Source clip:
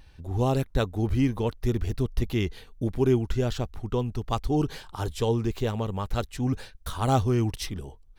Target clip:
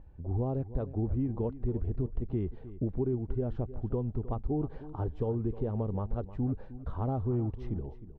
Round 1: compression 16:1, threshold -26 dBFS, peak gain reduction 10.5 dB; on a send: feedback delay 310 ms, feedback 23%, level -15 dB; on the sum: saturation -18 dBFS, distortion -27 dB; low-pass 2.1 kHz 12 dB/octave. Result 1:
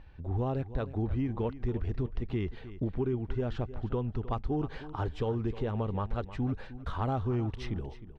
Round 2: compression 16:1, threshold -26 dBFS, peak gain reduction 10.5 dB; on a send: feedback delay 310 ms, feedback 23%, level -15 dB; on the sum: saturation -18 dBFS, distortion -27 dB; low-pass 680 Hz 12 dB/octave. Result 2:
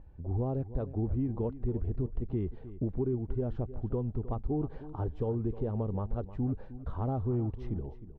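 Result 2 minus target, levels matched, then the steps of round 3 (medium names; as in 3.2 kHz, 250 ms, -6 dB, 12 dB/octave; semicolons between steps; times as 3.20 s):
saturation: distortion +14 dB
compression 16:1, threshold -26 dBFS, peak gain reduction 10.5 dB; on a send: feedback delay 310 ms, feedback 23%, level -15 dB; on the sum: saturation -10.5 dBFS, distortion -41 dB; low-pass 680 Hz 12 dB/octave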